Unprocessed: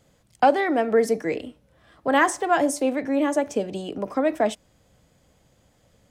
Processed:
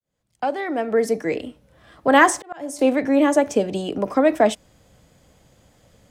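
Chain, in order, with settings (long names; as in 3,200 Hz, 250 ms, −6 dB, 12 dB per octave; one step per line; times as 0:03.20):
fade in at the beginning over 1.85 s
0:02.38–0:02.79: volume swells 658 ms
level +5.5 dB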